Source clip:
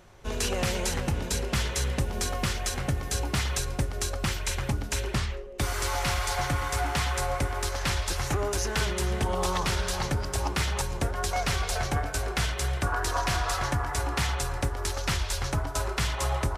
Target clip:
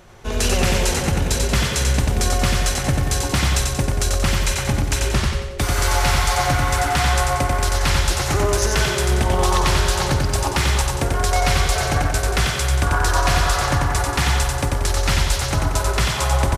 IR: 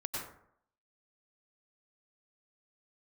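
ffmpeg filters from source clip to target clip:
-af "aecho=1:1:91|182|273|364|455|546:0.708|0.333|0.156|0.0735|0.0345|0.0162,volume=2.24"

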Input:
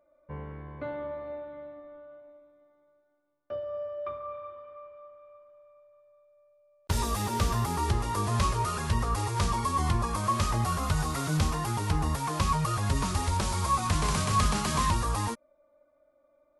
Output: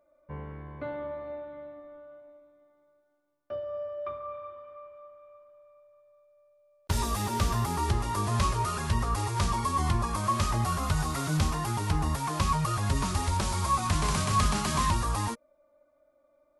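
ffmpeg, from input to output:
-af "bandreject=f=480:w=12"

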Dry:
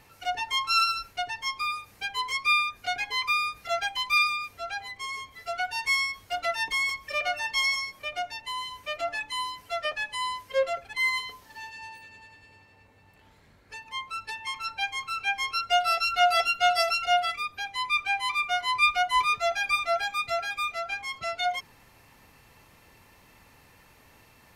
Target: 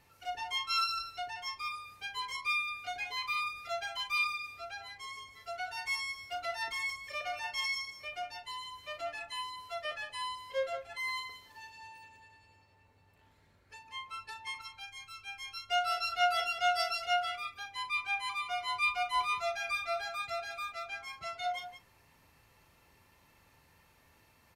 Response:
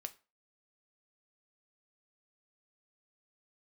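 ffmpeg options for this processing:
-filter_complex "[0:a]asettb=1/sr,asplit=3[s0][s1][s2];[s0]atrim=end=14.614[s3];[s1]atrim=start=14.61:end=15.69,asetpts=PTS-STARTPTS,afade=t=in:d=0.004:c=qsin,afade=t=out:st=1.076:d=0.004:c=qsin,equalizer=f=1000:w=0.3:g=-11[s4];[s2]atrim=start=15.686[s5];[s3][s4]acrossfade=d=0.004:c1=hsin:c2=qsin[s6];[s6][s5]acrossfade=d=0.004:c1=qsin:c2=hsin,aecho=1:1:37.9|180.8:0.316|0.282[s7];[1:a]atrim=start_sample=2205,asetrate=83790,aresample=44100[s8];[s7][s8]afir=irnorm=-1:irlink=0"

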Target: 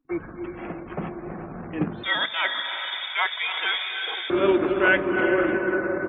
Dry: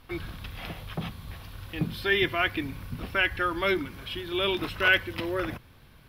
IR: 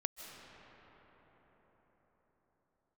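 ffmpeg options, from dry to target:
-filter_complex "[0:a]lowshelf=f=470:g=9.5[s0];[1:a]atrim=start_sample=2205,asetrate=25137,aresample=44100[s1];[s0][s1]afir=irnorm=-1:irlink=0,acrusher=bits=4:mode=log:mix=0:aa=0.000001,asettb=1/sr,asplit=3[s2][s3][s4];[s2]atrim=end=2.034[s5];[s3]atrim=start=2.03:end=4.3,asetpts=PTS-STARTPTS,afade=t=in:d=0.004:c=qsin,afade=t=out:st=2.266:d=0.004:c=qsin,lowpass=f=3100:t=q:w=0.5098,lowpass=f=3100:t=q:w=0.6013,lowpass=f=3100:t=q:w=0.9,lowpass=f=3100:t=q:w=2.563,afreqshift=-3700[s6];[s4]atrim=start=4.296[s7];[s5][s6]acrossfade=d=0.004:c1=hsin:c2=qsin[s8];[s8][s7]acrossfade=d=0.004:c1=qsin:c2=hsin,aeval=exprs='sgn(val(0))*max(abs(val(0))-0.00299,0)':c=same,acrossover=split=220 2300:gain=0.0891 1 0.0794[s9][s10][s11];[s9][s10][s11]amix=inputs=3:normalize=0,aecho=1:1:341:0.0944,afftdn=nr=33:nf=-47,bandreject=f=60:t=h:w=6,bandreject=f=120:t=h:w=6,volume=1.26"

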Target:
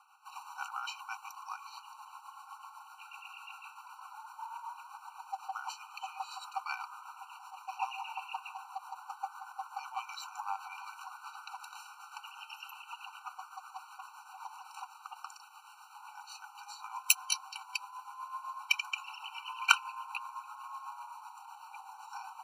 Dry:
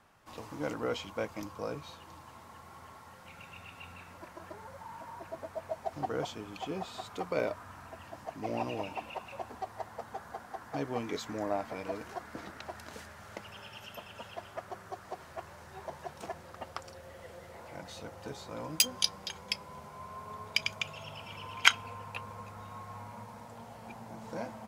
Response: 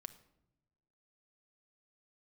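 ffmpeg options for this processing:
-af "atempo=1.1,tremolo=f=7.9:d=0.51,afftfilt=real='re*eq(mod(floor(b*sr/1024/770),2),1)':imag='im*eq(mod(floor(b*sr/1024/770),2),1)':win_size=1024:overlap=0.75,volume=1.88"

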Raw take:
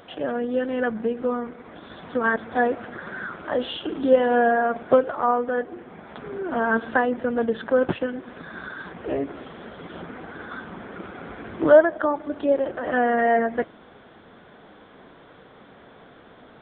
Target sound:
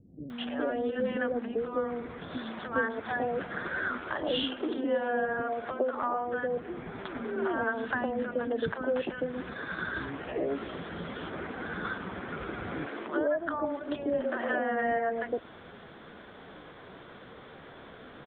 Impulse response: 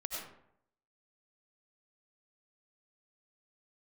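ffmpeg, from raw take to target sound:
-filter_complex "[0:a]acompressor=threshold=0.0447:ratio=6,atempo=0.91,acrossover=split=250|760[s0][s1][s2];[s2]adelay=300[s3];[s1]adelay=410[s4];[s0][s4][s3]amix=inputs=3:normalize=0,volume=1.26"

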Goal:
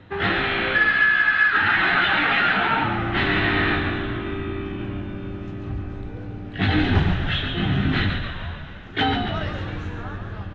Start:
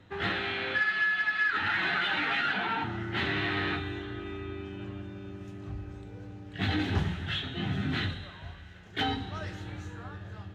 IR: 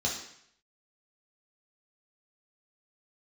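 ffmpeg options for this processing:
-filter_complex "[0:a]lowpass=3500,asplit=2[s0][s1];[s1]asplit=8[s2][s3][s4][s5][s6][s7][s8][s9];[s2]adelay=140,afreqshift=-60,volume=0.447[s10];[s3]adelay=280,afreqshift=-120,volume=0.269[s11];[s4]adelay=420,afreqshift=-180,volume=0.16[s12];[s5]adelay=560,afreqshift=-240,volume=0.0966[s13];[s6]adelay=700,afreqshift=-300,volume=0.0582[s14];[s7]adelay=840,afreqshift=-360,volume=0.0347[s15];[s8]adelay=980,afreqshift=-420,volume=0.0209[s16];[s9]adelay=1120,afreqshift=-480,volume=0.0124[s17];[s10][s11][s12][s13][s14][s15][s16][s17]amix=inputs=8:normalize=0[s18];[s0][s18]amix=inputs=2:normalize=0,volume=2.82"

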